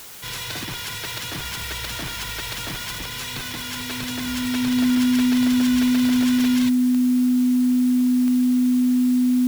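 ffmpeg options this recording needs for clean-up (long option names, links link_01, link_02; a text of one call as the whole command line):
ffmpeg -i in.wav -af "adeclick=threshold=4,bandreject=frequency=250:width=30,afwtdn=0.01" out.wav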